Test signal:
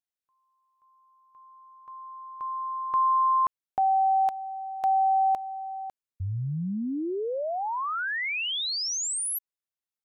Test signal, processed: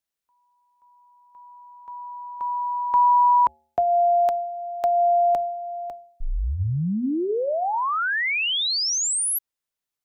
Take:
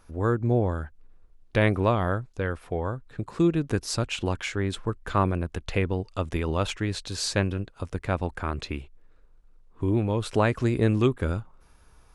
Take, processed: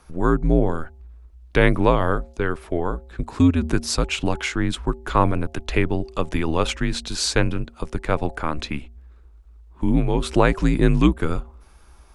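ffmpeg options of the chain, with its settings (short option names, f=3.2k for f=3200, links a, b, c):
-af "bandreject=f=153.5:t=h:w=4,bandreject=f=307:t=h:w=4,bandreject=f=460.5:t=h:w=4,bandreject=f=614:t=h:w=4,bandreject=f=767.5:t=h:w=4,bandreject=f=921:t=h:w=4,afreqshift=-74,volume=6dB"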